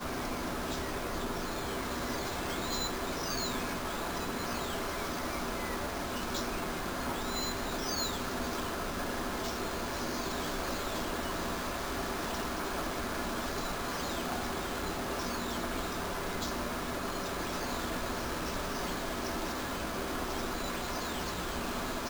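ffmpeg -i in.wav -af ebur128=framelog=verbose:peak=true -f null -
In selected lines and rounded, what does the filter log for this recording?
Integrated loudness:
  I:         -35.1 LUFS
  Threshold: -45.1 LUFS
Loudness range:
  LRA:         0.8 LU
  Threshold: -55.0 LUFS
  LRA low:   -35.4 LUFS
  LRA high:  -34.5 LUFS
True peak:
  Peak:      -21.7 dBFS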